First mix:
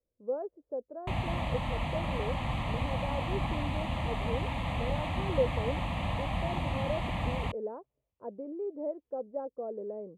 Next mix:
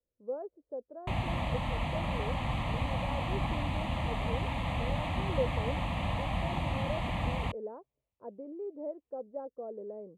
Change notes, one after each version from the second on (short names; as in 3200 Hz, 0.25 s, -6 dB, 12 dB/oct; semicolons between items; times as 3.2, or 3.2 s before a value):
speech -3.5 dB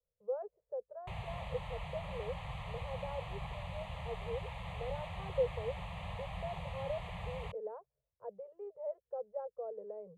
background -9.5 dB; master: add Chebyshev band-stop 180–440 Hz, order 3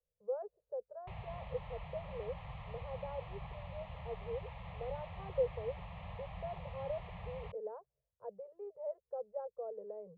background -3.5 dB; master: add air absorption 240 m